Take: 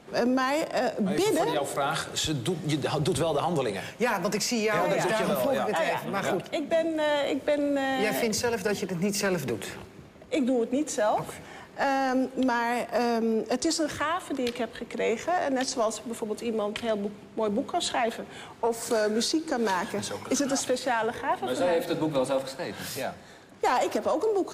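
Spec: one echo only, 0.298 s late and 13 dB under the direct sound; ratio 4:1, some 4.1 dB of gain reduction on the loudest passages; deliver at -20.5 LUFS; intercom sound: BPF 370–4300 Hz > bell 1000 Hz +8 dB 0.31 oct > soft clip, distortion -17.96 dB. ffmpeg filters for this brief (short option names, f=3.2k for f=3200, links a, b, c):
-af "acompressor=threshold=-26dB:ratio=4,highpass=370,lowpass=4.3k,equalizer=f=1k:t=o:w=0.31:g=8,aecho=1:1:298:0.224,asoftclip=threshold=-22.5dB,volume=12dB"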